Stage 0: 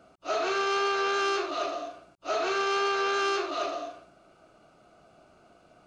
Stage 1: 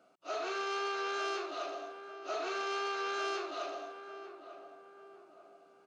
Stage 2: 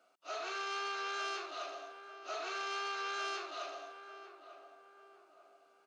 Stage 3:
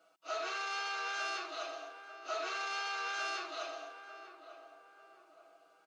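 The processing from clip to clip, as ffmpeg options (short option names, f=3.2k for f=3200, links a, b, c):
-filter_complex "[0:a]highpass=250,asplit=2[a][b];[b]adelay=894,lowpass=f=1.3k:p=1,volume=-10dB,asplit=2[c][d];[d]adelay=894,lowpass=f=1.3k:p=1,volume=0.47,asplit=2[e][f];[f]adelay=894,lowpass=f=1.3k:p=1,volume=0.47,asplit=2[g][h];[h]adelay=894,lowpass=f=1.3k:p=1,volume=0.47,asplit=2[i][j];[j]adelay=894,lowpass=f=1.3k:p=1,volume=0.47[k];[a][c][e][g][i][k]amix=inputs=6:normalize=0,volume=-8.5dB"
-af "highpass=f=980:p=1"
-af "aecho=1:1:6.2:0.75"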